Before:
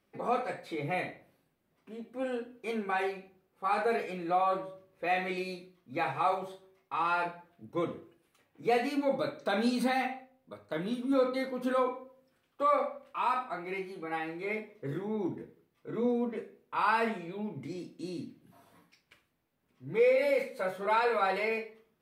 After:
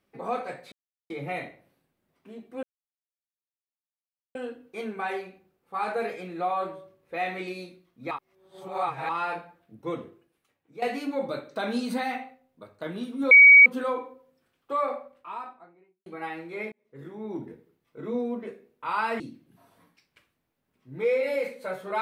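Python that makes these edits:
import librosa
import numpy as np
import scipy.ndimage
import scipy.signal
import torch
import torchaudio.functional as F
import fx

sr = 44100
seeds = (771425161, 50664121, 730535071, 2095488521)

y = fx.studio_fade_out(x, sr, start_s=12.62, length_s=1.34)
y = fx.edit(y, sr, fx.insert_silence(at_s=0.72, length_s=0.38),
    fx.insert_silence(at_s=2.25, length_s=1.72),
    fx.reverse_span(start_s=6.01, length_s=0.98),
    fx.fade_out_to(start_s=7.85, length_s=0.87, floor_db=-12.5),
    fx.bleep(start_s=11.21, length_s=0.35, hz=2260.0, db=-8.5),
    fx.fade_in_span(start_s=14.62, length_s=0.71),
    fx.cut(start_s=17.1, length_s=1.05), tone=tone)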